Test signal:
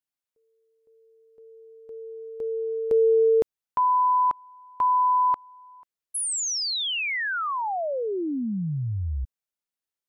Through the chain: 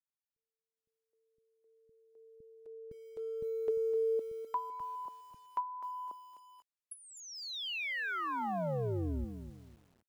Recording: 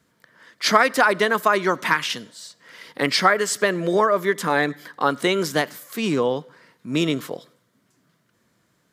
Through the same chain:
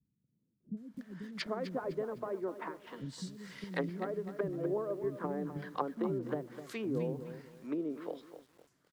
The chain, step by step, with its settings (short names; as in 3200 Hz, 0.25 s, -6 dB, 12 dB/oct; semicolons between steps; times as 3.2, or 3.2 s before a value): treble ducked by the level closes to 380 Hz, closed at -18 dBFS; bands offset in time lows, highs 0.77 s, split 240 Hz; lo-fi delay 0.254 s, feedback 35%, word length 8-bit, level -11 dB; gain -9 dB